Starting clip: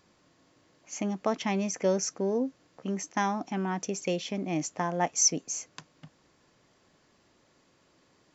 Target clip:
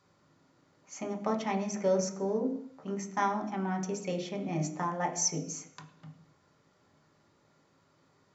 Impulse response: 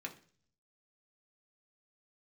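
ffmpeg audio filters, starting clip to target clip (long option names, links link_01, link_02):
-filter_complex "[1:a]atrim=start_sample=2205,afade=type=out:start_time=0.23:duration=0.01,atrim=end_sample=10584,asetrate=24255,aresample=44100[link_01];[0:a][link_01]afir=irnorm=-1:irlink=0,volume=-4dB"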